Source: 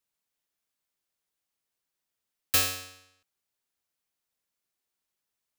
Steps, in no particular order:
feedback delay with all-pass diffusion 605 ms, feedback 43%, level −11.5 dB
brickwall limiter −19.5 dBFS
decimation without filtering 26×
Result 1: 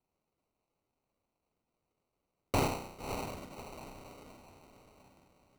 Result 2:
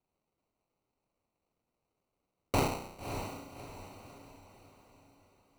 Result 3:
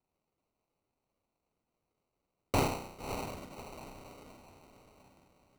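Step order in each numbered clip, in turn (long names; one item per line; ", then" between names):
feedback delay with all-pass diffusion, then brickwall limiter, then decimation without filtering
decimation without filtering, then feedback delay with all-pass diffusion, then brickwall limiter
feedback delay with all-pass diffusion, then decimation without filtering, then brickwall limiter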